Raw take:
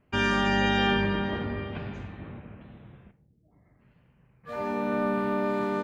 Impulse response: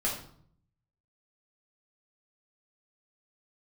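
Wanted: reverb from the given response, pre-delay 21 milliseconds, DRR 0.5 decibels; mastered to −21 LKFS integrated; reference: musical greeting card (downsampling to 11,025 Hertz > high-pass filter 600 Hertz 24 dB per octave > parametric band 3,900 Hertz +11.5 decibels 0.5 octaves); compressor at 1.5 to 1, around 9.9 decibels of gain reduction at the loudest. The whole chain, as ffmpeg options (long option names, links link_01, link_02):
-filter_complex "[0:a]acompressor=threshold=-49dB:ratio=1.5,asplit=2[link_01][link_02];[1:a]atrim=start_sample=2205,adelay=21[link_03];[link_02][link_03]afir=irnorm=-1:irlink=0,volume=-7.5dB[link_04];[link_01][link_04]amix=inputs=2:normalize=0,aresample=11025,aresample=44100,highpass=frequency=600:width=0.5412,highpass=frequency=600:width=1.3066,equalizer=frequency=3900:width_type=o:width=0.5:gain=11.5,volume=15.5dB"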